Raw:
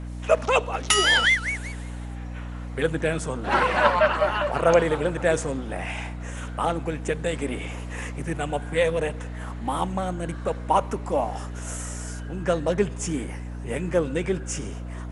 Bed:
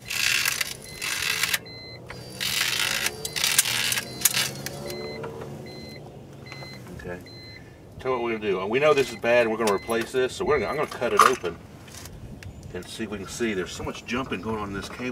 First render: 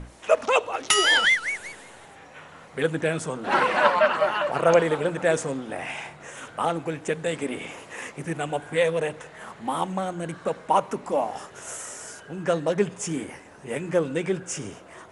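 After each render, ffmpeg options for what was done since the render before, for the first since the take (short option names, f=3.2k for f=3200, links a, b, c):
-af "bandreject=f=60:t=h:w=6,bandreject=f=120:t=h:w=6,bandreject=f=180:t=h:w=6,bandreject=f=240:t=h:w=6,bandreject=f=300:t=h:w=6"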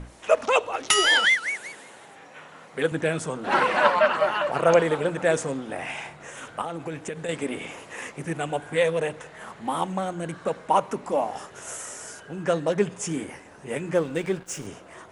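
-filter_complex "[0:a]asettb=1/sr,asplit=3[a][b][c];[a]atrim=end=1.084[d];[b]atrim=start=1.08:end=2.92,asetpts=PTS-STARTPTS,afade=t=in:d=0.004:c=qsin,afade=t=out:st=1.836:d=0.004:c=qsin,highpass=160[e];[c]atrim=start=2.916[f];[d][e]acrossfade=d=0.004:c1=hsin:c2=qsin[g];[g][f]acrossfade=d=0.004:c1=qsin:c2=hsin,asettb=1/sr,asplit=3[h][i][j];[h]atrim=end=6.614[k];[i]atrim=start=6.61:end=7.29,asetpts=PTS-STARTPTS,afade=t=in:d=0.004:c=qsin,afade=t=out:st=0.676:d=0.004:c=qsin,acompressor=threshold=-27dB:ratio=10:attack=3.2:release=140:knee=1:detection=peak[l];[j]atrim=start=7.286[m];[k][l]acrossfade=d=0.004:c1=hsin:c2=qsin[n];[n][m]acrossfade=d=0.004:c1=qsin:c2=hsin,asettb=1/sr,asplit=3[o][p][q];[o]atrim=end=13.964[r];[p]atrim=start=13.96:end=14.67,asetpts=PTS-STARTPTS,afade=t=in:d=0.004:c=qsin,afade=t=out:st=0.706:d=0.004:c=qsin,aeval=exprs='sgn(val(0))*max(abs(val(0))-0.00708,0)':c=same[s];[q]atrim=start=14.666[t];[r][s]acrossfade=d=0.004:c1=hsin:c2=qsin[u];[u][t]acrossfade=d=0.004:c1=qsin:c2=hsin"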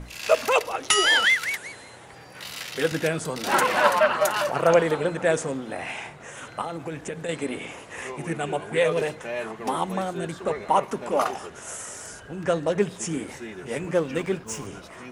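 -filter_complex "[1:a]volume=-11.5dB[a];[0:a][a]amix=inputs=2:normalize=0"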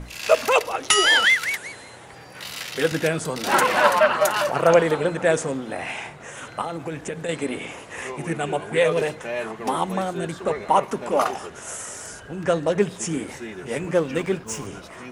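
-af "volume=2.5dB,alimiter=limit=-3dB:level=0:latency=1"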